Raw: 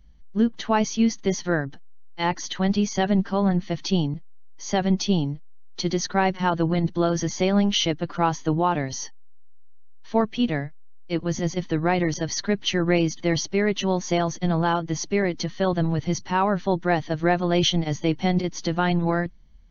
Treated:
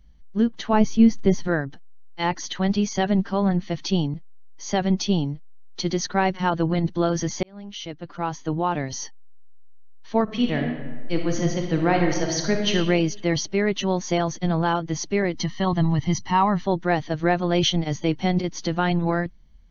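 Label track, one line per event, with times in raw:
0.730000	1.480000	tilt EQ -2.5 dB/octave
7.430000	8.970000	fade in
10.230000	12.710000	reverb throw, RT60 1.4 s, DRR 2 dB
15.350000	16.630000	comb 1 ms

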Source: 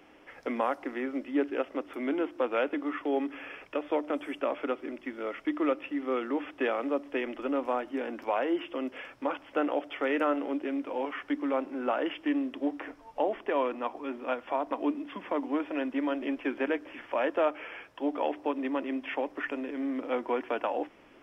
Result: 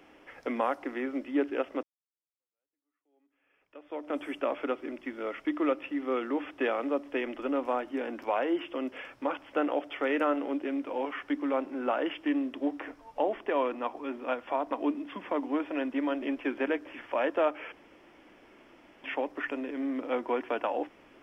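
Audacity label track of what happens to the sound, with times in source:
1.830000	4.170000	fade in exponential
17.720000	19.040000	room tone

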